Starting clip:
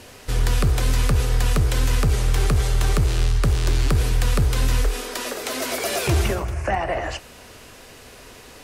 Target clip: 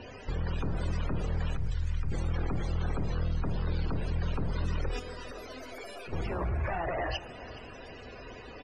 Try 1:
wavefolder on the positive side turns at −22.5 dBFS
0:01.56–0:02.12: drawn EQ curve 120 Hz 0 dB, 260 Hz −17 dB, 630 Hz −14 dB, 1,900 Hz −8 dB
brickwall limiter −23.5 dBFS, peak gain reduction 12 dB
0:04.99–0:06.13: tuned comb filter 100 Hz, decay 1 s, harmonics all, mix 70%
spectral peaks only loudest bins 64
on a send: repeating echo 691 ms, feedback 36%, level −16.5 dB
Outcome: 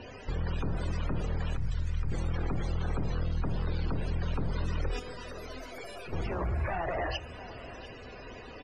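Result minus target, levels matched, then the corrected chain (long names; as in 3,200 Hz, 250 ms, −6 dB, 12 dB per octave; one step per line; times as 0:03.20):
echo 272 ms late
wavefolder on the positive side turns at −22.5 dBFS
0:01.56–0:02.12: drawn EQ curve 120 Hz 0 dB, 260 Hz −17 dB, 630 Hz −14 dB, 1,900 Hz −8 dB
brickwall limiter −23.5 dBFS, peak gain reduction 12 dB
0:04.99–0:06.13: tuned comb filter 100 Hz, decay 1 s, harmonics all, mix 70%
spectral peaks only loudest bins 64
on a send: repeating echo 419 ms, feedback 36%, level −16.5 dB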